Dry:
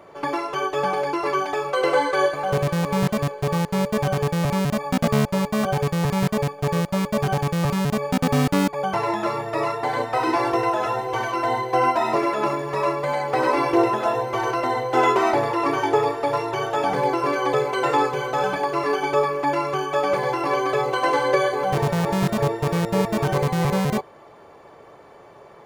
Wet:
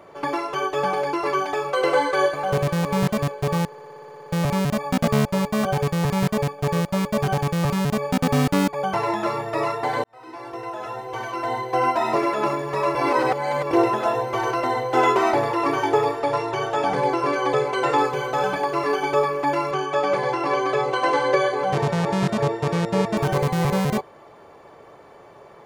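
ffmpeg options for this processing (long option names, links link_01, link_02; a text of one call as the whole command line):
ffmpeg -i in.wav -filter_complex "[0:a]asettb=1/sr,asplit=3[link_01][link_02][link_03];[link_01]atrim=end=16.204[link_04];[link_02]atrim=start=16.2:end=17.98,asetpts=PTS-STARTPTS,afade=type=in:duration=0.004:curve=qsin,afade=type=out:start_time=1.776:duration=0.004:curve=qsin,lowpass=10000[link_05];[link_03]atrim=start=17.976[link_06];[link_04][link_05]acrossfade=duration=0.004:curve1=hsin:curve2=qsin[link_07];[link_07][link_06]acrossfade=duration=0.004:curve1=qsin:curve2=hsin,asettb=1/sr,asplit=3[link_08][link_09][link_10];[link_08]atrim=end=19.714[link_11];[link_09]atrim=start=19.71:end=23.17,asetpts=PTS-STARTPTS,afade=type=in:duration=0.004:curve=qsin,afade=type=out:start_time=3.456:duration=0.004:curve=qsin,highpass=100,lowpass=7800[link_12];[link_10]atrim=start=23.166[link_13];[link_11][link_12]acrossfade=duration=0.004:curve1=hsin:curve2=qsin[link_14];[link_14][link_13]acrossfade=duration=0.004:curve1=qsin:curve2=hsin,asplit=15[link_15][link_16][link_17][link_18][link_19][link_20][link_21][link_22][link_23][link_24][link_25][link_26][link_27][link_28][link_29];[link_15]atrim=end=3.722[link_30];[link_16]atrim=start=3.658:end=3.722[link_31];[link_17]atrim=start=3.658:end=3.722[link_32];[link_18]atrim=start=3.658:end=3.722[link_33];[link_19]atrim=start=3.658:end=3.722[link_34];[link_20]atrim=start=3.658:end=3.722[link_35];[link_21]atrim=start=3.658:end=3.722[link_36];[link_22]atrim=start=3.658:end=3.722[link_37];[link_23]atrim=start=3.658:end=3.722[link_38];[link_24]atrim=start=3.658:end=3.722[link_39];[link_25]atrim=start=3.658:end=3.722[link_40];[link_26]atrim=start=4.318:end=10.04,asetpts=PTS-STARTPTS,afade=type=out:start_time=5.718:duration=0.004:curve=hsin[link_41];[link_27]atrim=start=10.04:end=12.952,asetpts=PTS-STARTPTS,afade=type=in:duration=2.12[link_42];[link_28]atrim=start=12.948:end=13.712,asetpts=PTS-STARTPTS,areverse[link_43];[link_29]atrim=start=13.708[link_44];[link_30][link_31]acrossfade=duration=0.004:curve1=hsin:curve2=hsin[link_45];[link_45][link_32]acrossfade=duration=0.004:curve1=hsin:curve2=hsin[link_46];[link_46][link_33]acrossfade=duration=0.004:curve1=hsin:curve2=hsin[link_47];[link_47][link_34]acrossfade=duration=0.004:curve1=hsin:curve2=hsin[link_48];[link_48][link_35]acrossfade=duration=0.004:curve1=hsin:curve2=hsin[link_49];[link_49][link_36]acrossfade=duration=0.004:curve1=hsin:curve2=hsin[link_50];[link_50][link_37]acrossfade=duration=0.004:curve1=hsin:curve2=hsin[link_51];[link_51][link_38]acrossfade=duration=0.004:curve1=hsin:curve2=hsin[link_52];[link_52][link_39]acrossfade=duration=0.004:curve1=hsin:curve2=hsin[link_53];[link_53][link_40]acrossfade=duration=0.004:curve1=hsin:curve2=hsin[link_54];[link_41][link_42]concat=n=2:v=0:a=1[link_55];[link_54][link_55]acrossfade=duration=0.004:curve1=hsin:curve2=hsin[link_56];[link_56][link_43]acrossfade=duration=0.004:curve1=hsin:curve2=hsin[link_57];[link_57][link_44]acrossfade=duration=0.004:curve1=hsin:curve2=hsin" out.wav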